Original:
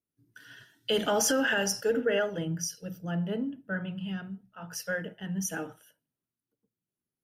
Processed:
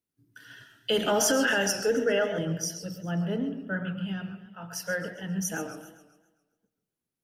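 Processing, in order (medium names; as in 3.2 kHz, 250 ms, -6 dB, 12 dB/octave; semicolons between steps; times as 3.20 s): on a send at -11 dB: reverberation RT60 0.45 s, pre-delay 76 ms; on the sum: modulated delay 135 ms, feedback 48%, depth 147 cents, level -13 dB; trim +1.5 dB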